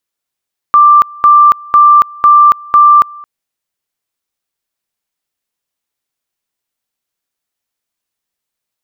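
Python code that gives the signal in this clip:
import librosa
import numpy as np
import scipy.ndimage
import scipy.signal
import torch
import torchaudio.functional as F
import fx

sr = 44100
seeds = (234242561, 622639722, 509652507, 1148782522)

y = fx.two_level_tone(sr, hz=1180.0, level_db=-1.5, drop_db=25.5, high_s=0.28, low_s=0.22, rounds=5)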